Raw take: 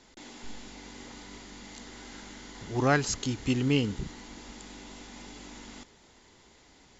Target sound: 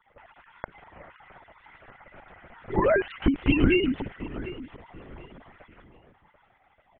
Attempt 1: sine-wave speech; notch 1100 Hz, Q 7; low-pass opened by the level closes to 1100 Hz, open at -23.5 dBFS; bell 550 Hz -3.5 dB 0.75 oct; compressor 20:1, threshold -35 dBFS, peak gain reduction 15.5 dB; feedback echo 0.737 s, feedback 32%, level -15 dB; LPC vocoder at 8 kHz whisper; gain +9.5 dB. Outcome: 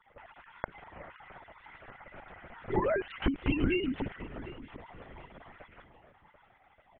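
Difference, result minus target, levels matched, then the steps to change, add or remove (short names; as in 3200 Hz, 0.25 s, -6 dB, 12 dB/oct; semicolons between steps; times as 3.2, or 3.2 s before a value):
compressor: peak gain reduction +8 dB
change: compressor 20:1, threshold -26.5 dBFS, peak gain reduction 7.5 dB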